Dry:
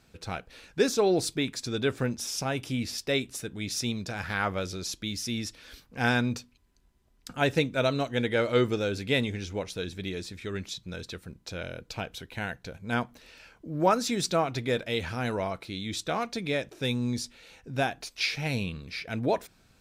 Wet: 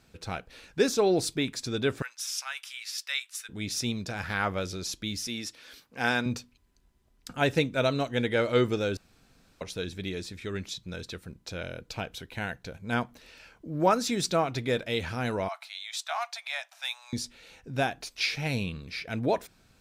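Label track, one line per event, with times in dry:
2.020000	3.490000	HPF 1200 Hz 24 dB/oct
5.270000	6.260000	HPF 330 Hz 6 dB/oct
8.970000	9.610000	room tone
15.480000	17.130000	steep high-pass 670 Hz 72 dB/oct

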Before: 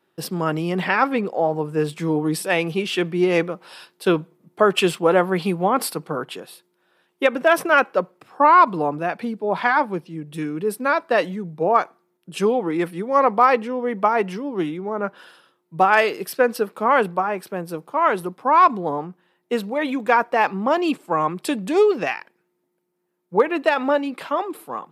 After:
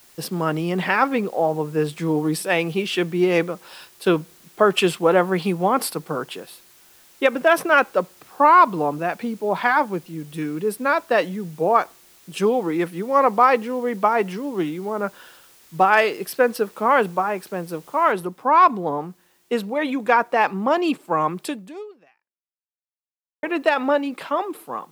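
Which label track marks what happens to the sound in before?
18.120000	18.120000	noise floor step -52 dB -63 dB
21.410000	23.430000	fade out exponential

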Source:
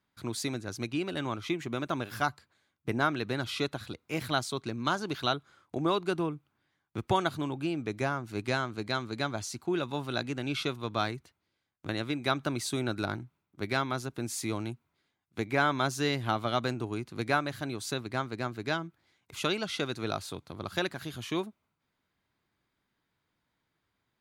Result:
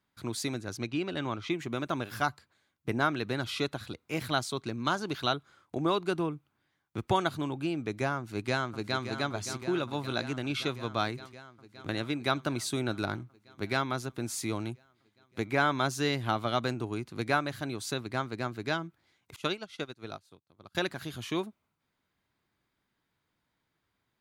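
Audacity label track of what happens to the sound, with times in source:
0.770000	1.510000	LPF 6100 Hz
8.160000	9.050000	echo throw 0.57 s, feedback 75%, level -9.5 dB
19.360000	20.750000	upward expander 2.5:1, over -47 dBFS

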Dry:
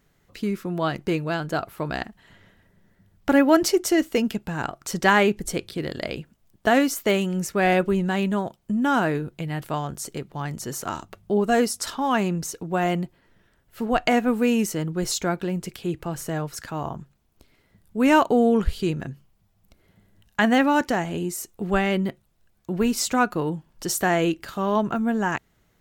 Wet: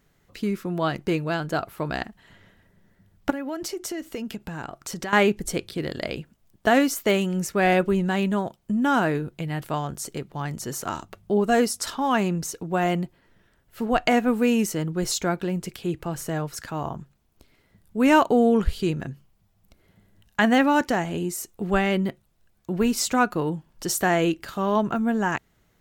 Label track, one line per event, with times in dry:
3.300000	5.130000	compressor 5:1, threshold -29 dBFS

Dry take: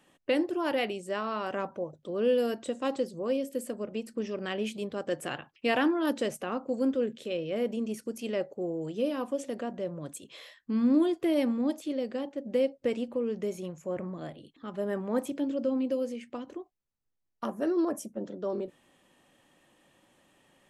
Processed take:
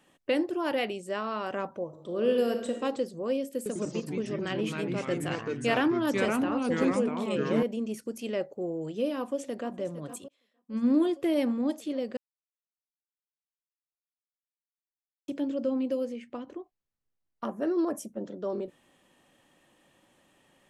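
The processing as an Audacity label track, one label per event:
1.850000	2.770000	reverb throw, RT60 0.93 s, DRR 4.5 dB
3.560000	7.630000	echoes that change speed 97 ms, each echo -3 st, echoes 3
9.170000	9.720000	echo throw 0.46 s, feedback 75%, level -13.5 dB
10.280000	10.850000	upward expander 2.5:1, over -41 dBFS
12.170000	15.280000	mute
16.050000	17.710000	high shelf 5400 Hz -9.5 dB

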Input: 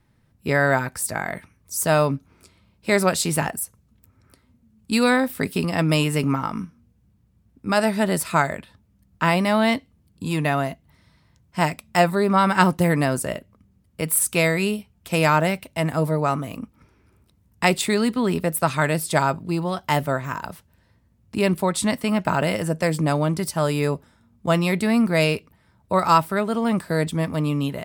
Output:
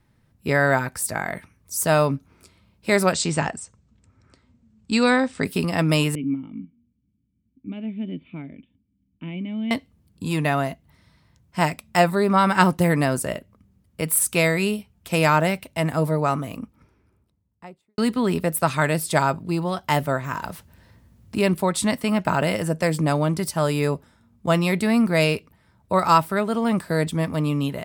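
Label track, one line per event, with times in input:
3.120000	5.450000	steep low-pass 8500 Hz 72 dB/oct
6.150000	9.710000	vocal tract filter i
16.390000	17.980000	studio fade out
20.330000	21.420000	G.711 law mismatch coded by mu

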